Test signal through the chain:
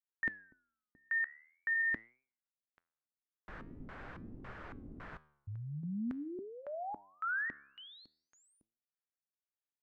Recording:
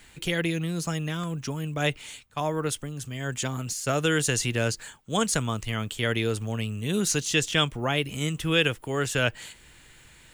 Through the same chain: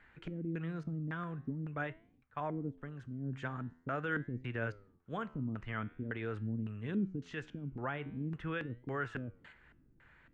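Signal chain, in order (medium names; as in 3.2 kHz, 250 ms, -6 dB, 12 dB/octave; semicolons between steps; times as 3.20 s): peak limiter -18.5 dBFS; LFO low-pass square 1.8 Hz 270–1600 Hz; flange 0.45 Hz, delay 7.5 ms, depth 7.7 ms, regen +88%; trim -6 dB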